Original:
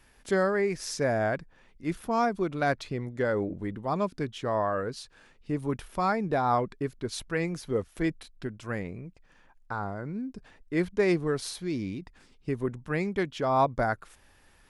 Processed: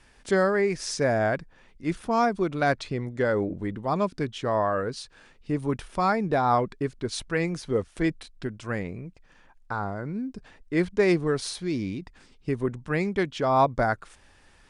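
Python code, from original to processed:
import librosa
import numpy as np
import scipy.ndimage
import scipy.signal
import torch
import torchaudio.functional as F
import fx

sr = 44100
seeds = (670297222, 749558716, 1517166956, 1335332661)

y = scipy.signal.sosfilt(scipy.signal.ellip(4, 1.0, 40, 9600.0, 'lowpass', fs=sr, output='sos'), x)
y = y * 10.0 ** (4.0 / 20.0)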